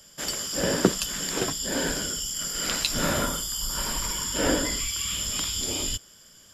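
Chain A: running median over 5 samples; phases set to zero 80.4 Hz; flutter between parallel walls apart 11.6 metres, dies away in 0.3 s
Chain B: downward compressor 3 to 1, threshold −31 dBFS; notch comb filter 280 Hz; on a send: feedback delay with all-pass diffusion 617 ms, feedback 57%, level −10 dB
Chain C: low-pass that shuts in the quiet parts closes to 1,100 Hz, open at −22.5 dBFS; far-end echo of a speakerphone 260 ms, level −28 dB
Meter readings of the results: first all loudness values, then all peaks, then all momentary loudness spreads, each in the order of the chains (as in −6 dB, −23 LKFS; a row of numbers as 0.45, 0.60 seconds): −31.0, −32.0, −27.5 LKFS; −1.5, −14.5, −4.0 dBFS; 7, 2, 8 LU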